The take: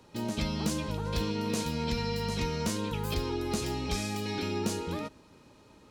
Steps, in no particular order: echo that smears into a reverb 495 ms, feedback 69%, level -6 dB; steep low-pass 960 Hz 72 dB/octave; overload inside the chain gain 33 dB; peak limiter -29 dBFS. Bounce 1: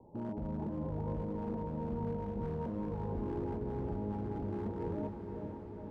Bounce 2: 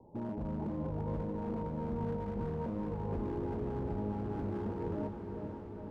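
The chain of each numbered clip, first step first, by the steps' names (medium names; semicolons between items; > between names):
peak limiter > steep low-pass > overload inside the chain > echo that smears into a reverb; steep low-pass > peak limiter > overload inside the chain > echo that smears into a reverb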